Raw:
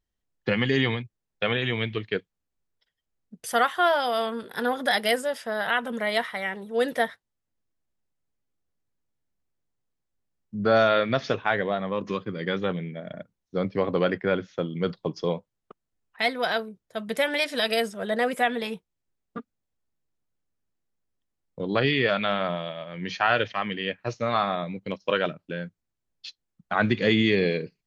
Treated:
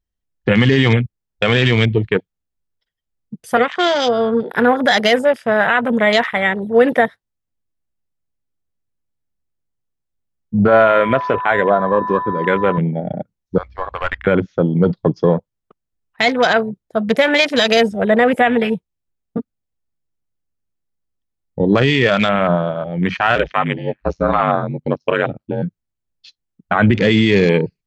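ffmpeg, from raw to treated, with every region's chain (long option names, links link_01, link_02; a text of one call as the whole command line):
ffmpeg -i in.wav -filter_complex "[0:a]asettb=1/sr,asplit=3[link_01][link_02][link_03];[link_01]atrim=end=3.574[link_04];[link_02]atrim=start=3.57:end=4.5,asetpts=PTS-STARTPTS,afade=type=in:duration=0.004:curve=qsin,afade=type=out:start_time=0.926:duration=0.004:curve=qsin,acrossover=split=420|3000[link_05][link_06][link_07];[link_06]acompressor=threshold=-43dB:ratio=2:attack=3.2:release=140:knee=2.83:detection=peak[link_08];[link_05][link_08][link_07]amix=inputs=3:normalize=0,highpass=frequency=140:width=0.5412,highpass=frequency=140:width=1.3066,equalizer=frequency=480:width_type=q:width=4:gain=7,equalizer=frequency=2100:width_type=q:width=4:gain=8,equalizer=frequency=3400:width_type=q:width=4:gain=3,lowpass=frequency=7100:width=0.5412,lowpass=frequency=7100:width=1.3066[link_09];[link_03]atrim=start=4.496[link_10];[link_04][link_09]acrossfade=duration=0.004:curve1=hsin:curve2=qsin[link_11];[link_11][link_10]acrossfade=duration=0.004:curve1=qsin:curve2=hsin,asettb=1/sr,asplit=3[link_12][link_13][link_14];[link_12]atrim=end=10.684[link_15];[link_13]atrim=start=10.68:end=12.78,asetpts=PTS-STARTPTS,afade=type=in:duration=0.004:curve=qsin,afade=type=out:start_time=2.096:duration=0.004:curve=qsin,bass=frequency=250:gain=-10,treble=frequency=4000:gain=-8,aeval=exprs='val(0)+0.02*sin(2*PI*1000*n/s)':channel_layout=same[link_16];[link_14]atrim=start=12.776[link_17];[link_15][link_16]acrossfade=duration=0.004:curve1=hsin:curve2=qsin[link_18];[link_18][link_17]acrossfade=duration=0.004:curve1=qsin:curve2=hsin,asettb=1/sr,asplit=3[link_19][link_20][link_21];[link_19]atrim=end=13.584[link_22];[link_20]atrim=start=13.58:end=14.27,asetpts=PTS-STARTPTS,afade=type=in:duration=0.004:curve=qsin,afade=type=out:start_time=0.686:duration=0.004:curve=qsin,highpass=frequency=820:width=0.5412,highpass=frequency=820:width=1.3066,aeval=exprs='val(0)+0.002*(sin(2*PI*60*n/s)+sin(2*PI*2*60*n/s)/2+sin(2*PI*3*60*n/s)/3+sin(2*PI*4*60*n/s)/4+sin(2*PI*5*60*n/s)/5)':channel_layout=same,aeval=exprs='(tanh(14.1*val(0)+0.6)-tanh(0.6))/14.1':channel_layout=same[link_23];[link_21]atrim=start=14.266[link_24];[link_22][link_23]acrossfade=duration=0.004:curve1=hsin:curve2=qsin[link_25];[link_25][link_24]acrossfade=duration=0.004:curve1=qsin:curve2=hsin,asettb=1/sr,asplit=3[link_26][link_27][link_28];[link_26]atrim=end=23.354[link_29];[link_27]atrim=start=23.35:end=25.63,asetpts=PTS-STARTPTS,afade=type=in:duration=0.004:curve=qsin,afade=type=out:start_time=2.276:duration=0.004:curve=qsin,lowshelf=frequency=100:gain=-7,aecho=1:1:3.9:0.3,atrim=end_sample=100548,aeval=exprs='val(0)*sin(2*PI*48*n/s)':channel_layout=same[link_30];[link_28]atrim=start=25.626[link_31];[link_29][link_30]acrossfade=duration=0.004:curve1=hsin:curve2=qsin[link_32];[link_32][link_31]acrossfade=duration=0.004:curve1=qsin:curve2=hsin,afwtdn=0.0178,lowshelf=frequency=150:gain=7,alimiter=level_in=16dB:limit=-1dB:release=50:level=0:latency=1,volume=-2.5dB" out.wav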